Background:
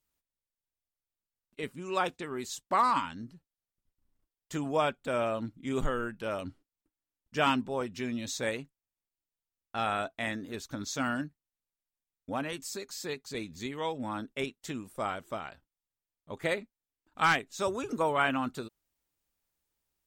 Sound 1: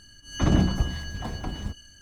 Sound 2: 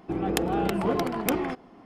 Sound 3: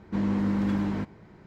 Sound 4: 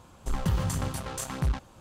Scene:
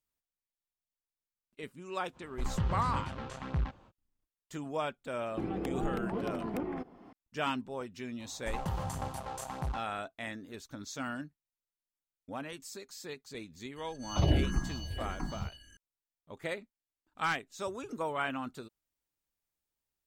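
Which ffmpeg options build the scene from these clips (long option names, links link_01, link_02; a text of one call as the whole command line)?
ffmpeg -i bed.wav -i cue0.wav -i cue1.wav -i cue2.wav -i cue3.wav -filter_complex "[4:a]asplit=2[link_01][link_02];[0:a]volume=-6.5dB[link_03];[link_01]lowpass=3200[link_04];[2:a]acrossover=split=400|1300|2600[link_05][link_06][link_07][link_08];[link_05]acompressor=threshold=-32dB:ratio=3[link_09];[link_06]acompressor=threshold=-40dB:ratio=3[link_10];[link_07]acompressor=threshold=-53dB:ratio=3[link_11];[link_08]acompressor=threshold=-58dB:ratio=3[link_12];[link_09][link_10][link_11][link_12]amix=inputs=4:normalize=0[link_13];[link_02]equalizer=frequency=780:width=1.6:gain=12.5[link_14];[1:a]asplit=2[link_15][link_16];[link_16]afreqshift=-1.6[link_17];[link_15][link_17]amix=inputs=2:normalize=1[link_18];[link_04]atrim=end=1.8,asetpts=PTS-STARTPTS,volume=-5dB,afade=type=in:duration=0.05,afade=type=out:start_time=1.75:duration=0.05,adelay=2120[link_19];[link_13]atrim=end=1.85,asetpts=PTS-STARTPTS,volume=-3.5dB,afade=type=in:duration=0.004:curve=hsin,afade=type=out:start_time=1.846:duration=0.004:curve=hsin,adelay=5280[link_20];[link_14]atrim=end=1.8,asetpts=PTS-STARTPTS,volume=-9.5dB,afade=type=in:duration=0.004:curve=hsin,afade=type=out:start_time=1.796:duration=0.004:curve=hsin,adelay=8200[link_21];[link_18]atrim=end=2.01,asetpts=PTS-STARTPTS,volume=-2.5dB,afade=type=in:duration=0.004:curve=hsin,afade=type=out:start_time=2.006:duration=0.004:curve=hsin,adelay=13760[link_22];[link_03][link_19][link_20][link_21][link_22]amix=inputs=5:normalize=0" out.wav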